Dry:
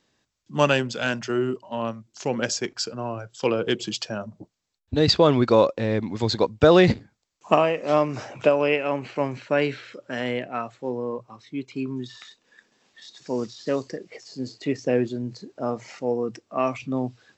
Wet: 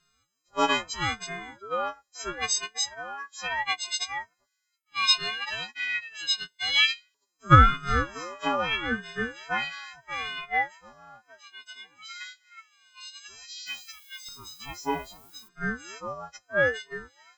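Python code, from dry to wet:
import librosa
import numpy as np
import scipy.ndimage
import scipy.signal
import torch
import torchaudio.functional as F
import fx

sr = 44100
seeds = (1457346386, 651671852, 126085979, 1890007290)

y = fx.freq_snap(x, sr, grid_st=4)
y = fx.filter_lfo_highpass(y, sr, shape='saw_up', hz=0.14, low_hz=650.0, high_hz=2800.0, q=6.5)
y = fx.dmg_noise_colour(y, sr, seeds[0], colour='violet', level_db=-45.0, at=(13.66, 15.47), fade=0.02)
y = fx.ring_lfo(y, sr, carrier_hz=490.0, swing_pct=45, hz=0.77)
y = F.gain(torch.from_numpy(y), -7.0).numpy()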